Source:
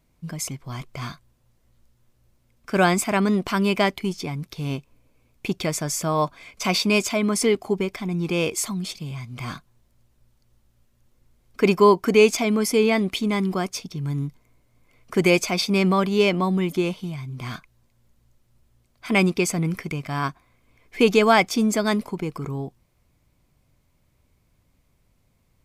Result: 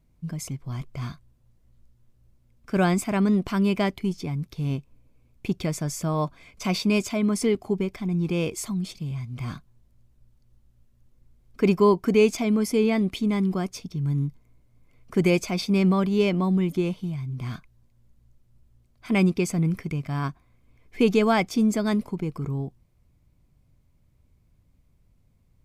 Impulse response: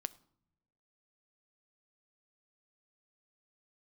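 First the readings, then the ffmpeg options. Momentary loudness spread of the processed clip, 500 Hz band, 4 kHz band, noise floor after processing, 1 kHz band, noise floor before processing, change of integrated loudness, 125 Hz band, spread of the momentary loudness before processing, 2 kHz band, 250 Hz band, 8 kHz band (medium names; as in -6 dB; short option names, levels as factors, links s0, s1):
13 LU, -3.5 dB, -7.5 dB, -63 dBFS, -6.5 dB, -65 dBFS, -2.5 dB, +1.0 dB, 16 LU, -7.0 dB, 0.0 dB, -7.5 dB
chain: -af "lowshelf=f=300:g=11.5,volume=0.422"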